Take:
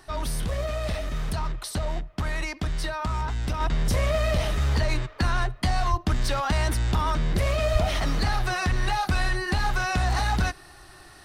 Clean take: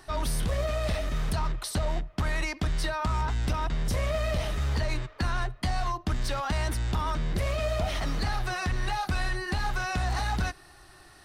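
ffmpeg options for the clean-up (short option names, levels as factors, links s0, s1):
-filter_complex "[0:a]asplit=3[s0][s1][s2];[s0]afade=t=out:st=5.9:d=0.02[s3];[s1]highpass=f=140:w=0.5412,highpass=f=140:w=1.3066,afade=t=in:st=5.9:d=0.02,afade=t=out:st=6.02:d=0.02[s4];[s2]afade=t=in:st=6.02:d=0.02[s5];[s3][s4][s5]amix=inputs=3:normalize=0,asplit=3[s6][s7][s8];[s6]afade=t=out:st=7.72:d=0.02[s9];[s7]highpass=f=140:w=0.5412,highpass=f=140:w=1.3066,afade=t=in:st=7.72:d=0.02,afade=t=out:st=7.84:d=0.02[s10];[s8]afade=t=in:st=7.84:d=0.02[s11];[s9][s10][s11]amix=inputs=3:normalize=0,asetnsamples=n=441:p=0,asendcmd='3.6 volume volume -4.5dB',volume=1"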